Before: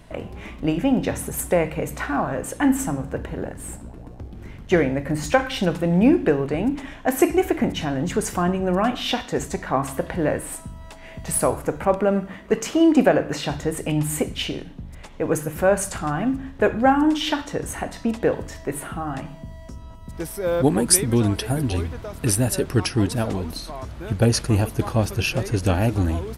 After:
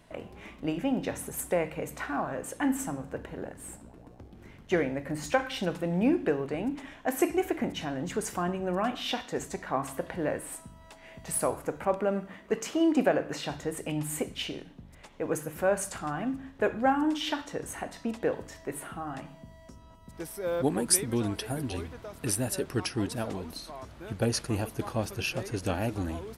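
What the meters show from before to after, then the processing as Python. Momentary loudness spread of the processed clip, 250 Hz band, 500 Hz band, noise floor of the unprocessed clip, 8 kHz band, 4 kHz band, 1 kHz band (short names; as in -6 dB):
15 LU, -9.5 dB, -8.0 dB, -41 dBFS, -7.5 dB, -7.5 dB, -7.5 dB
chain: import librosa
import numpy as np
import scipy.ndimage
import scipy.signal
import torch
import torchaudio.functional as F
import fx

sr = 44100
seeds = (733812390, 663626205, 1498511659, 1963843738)

y = fx.low_shelf(x, sr, hz=120.0, db=-10.0)
y = y * librosa.db_to_amplitude(-7.5)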